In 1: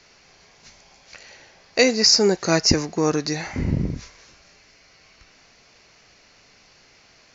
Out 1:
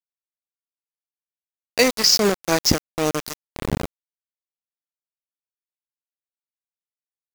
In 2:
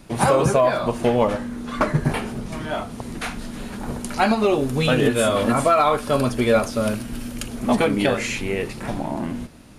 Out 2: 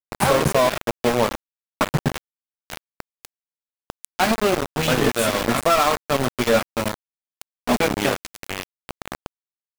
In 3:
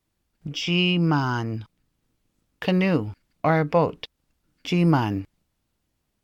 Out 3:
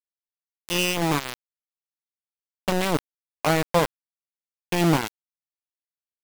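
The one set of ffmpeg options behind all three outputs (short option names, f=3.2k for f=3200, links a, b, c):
-af "afftdn=nr=16:nf=-38,aeval=exprs='val(0)*gte(abs(val(0)),0.141)':c=same"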